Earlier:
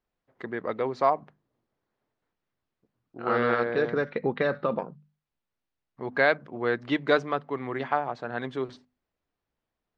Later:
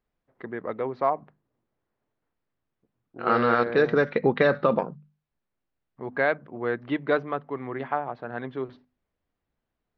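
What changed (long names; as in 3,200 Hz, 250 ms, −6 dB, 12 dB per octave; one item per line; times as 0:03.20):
first voice: add high-frequency loss of the air 330 metres
second voice +5.5 dB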